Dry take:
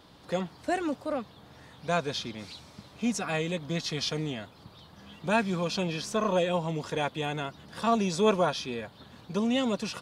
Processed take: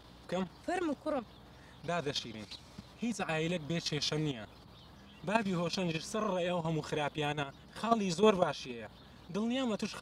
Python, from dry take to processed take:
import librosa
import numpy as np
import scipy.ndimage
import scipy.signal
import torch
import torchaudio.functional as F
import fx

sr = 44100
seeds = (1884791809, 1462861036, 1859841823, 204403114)

y = fx.add_hum(x, sr, base_hz=60, snr_db=28)
y = fx.level_steps(y, sr, step_db=11)